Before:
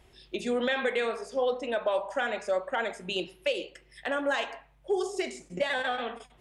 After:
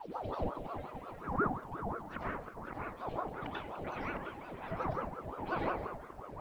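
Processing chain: tape stop at the end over 0.57 s; RIAA curve playback; in parallel at -1 dB: compressor 16:1, threshold -35 dBFS, peak gain reduction 16.5 dB; on the sum: vibrato 0.93 Hz 9 cents; reverse echo 0.185 s -13.5 dB; flipped gate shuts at -20 dBFS, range -28 dB; LFO low-pass sine 4.4 Hz 500–5100 Hz; bit-crush 11-bit; echoes that change speed 0.28 s, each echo -2 st, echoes 3, each echo -6 dB; reverb RT60 0.75 s, pre-delay 83 ms, DRR -6.5 dB; ring modulator with a swept carrier 580 Hz, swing 60%, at 5.6 Hz; gain -6.5 dB

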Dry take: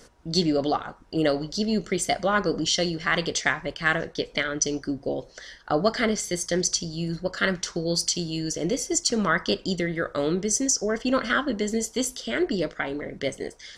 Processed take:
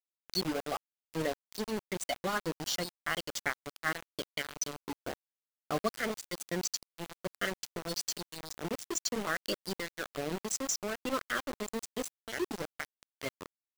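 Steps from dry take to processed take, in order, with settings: bin magnitudes rounded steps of 30 dB; reverb removal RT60 0.82 s; sample gate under -24.5 dBFS; gain -8.5 dB

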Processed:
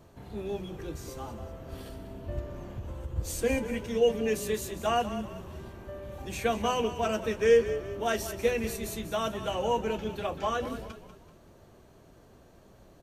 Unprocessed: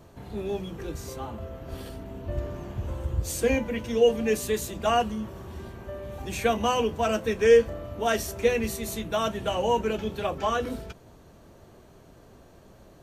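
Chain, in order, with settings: on a send: frequency-shifting echo 0.191 s, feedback 42%, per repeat -31 Hz, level -12 dB; 2.4–3.16 on the sum: compressor 2:1, threshold -32 dBFS, peak gain reduction 5 dB; gain -4 dB

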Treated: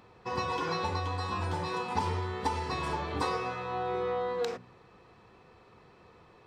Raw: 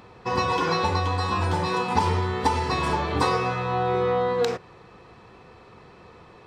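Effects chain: de-hum 61.45 Hz, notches 4; gain -8.5 dB

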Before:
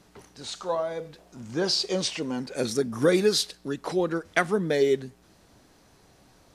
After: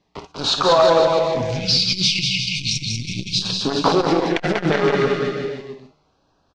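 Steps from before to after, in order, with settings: sample leveller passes 5; LPF 5200 Hz 24 dB/oct; high shelf 3300 Hz +3 dB; non-linear reverb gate 80 ms rising, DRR 7 dB; compressor, threshold -13 dBFS, peak gain reduction 8.5 dB; bell 1200 Hz +6.5 dB 1.4 oct; resonator 76 Hz, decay 1.3 s, harmonics all, mix 40%; 1.41–3.42 brick-wall FIR band-stop 200–2100 Hz; bouncing-ball echo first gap 0.19 s, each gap 0.9×, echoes 5; LFO notch sine 0.35 Hz 870–2100 Hz; core saturation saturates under 520 Hz; gain +3.5 dB

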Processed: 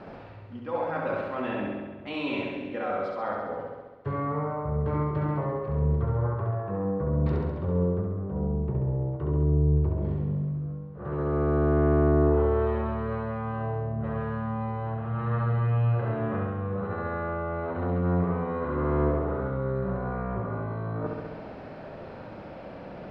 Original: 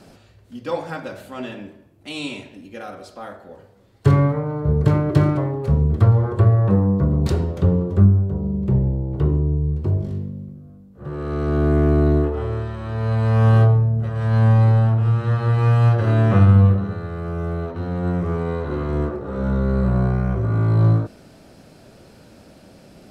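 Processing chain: graphic EQ 500/1000/2000 Hz +5/+8/+5 dB; reverse; compressor 10:1, threshold -27 dBFS, peak gain reduction 20 dB; reverse; air absorption 330 m; flutter echo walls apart 11.6 m, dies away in 1.2 s

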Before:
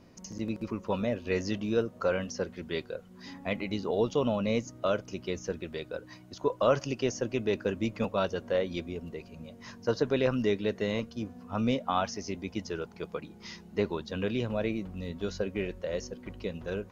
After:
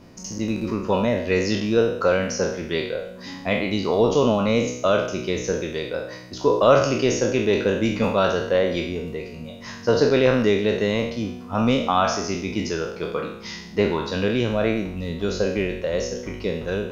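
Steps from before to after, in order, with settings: spectral trails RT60 0.70 s; gain +7.5 dB

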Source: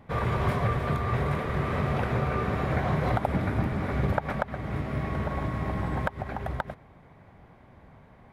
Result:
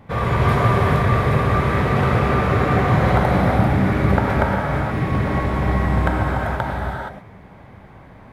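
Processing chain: non-linear reverb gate 0.5 s flat, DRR -3.5 dB; gain +5.5 dB

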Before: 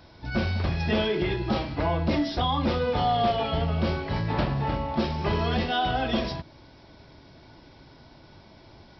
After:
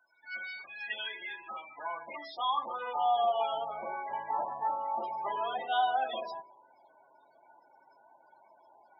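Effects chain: resonator 52 Hz, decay 1.3 s, harmonics all, mix 40%; loudest bins only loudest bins 32; high-pass sweep 1800 Hz -> 810 Hz, 0.57–3.4; gain -3 dB

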